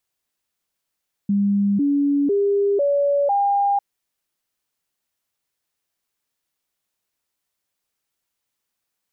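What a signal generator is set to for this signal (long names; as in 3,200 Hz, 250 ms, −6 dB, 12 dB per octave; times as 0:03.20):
stepped sweep 201 Hz up, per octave 2, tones 5, 0.50 s, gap 0.00 s −15.5 dBFS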